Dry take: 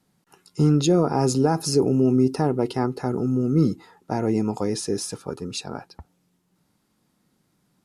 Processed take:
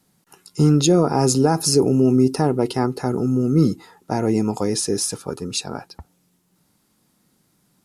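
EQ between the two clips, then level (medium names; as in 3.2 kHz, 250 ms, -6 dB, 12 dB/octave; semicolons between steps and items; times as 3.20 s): treble shelf 5.7 kHz +8 dB; +3.0 dB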